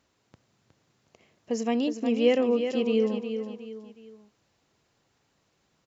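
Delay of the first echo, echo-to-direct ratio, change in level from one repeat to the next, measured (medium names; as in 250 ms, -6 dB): 364 ms, -7.5 dB, -8.5 dB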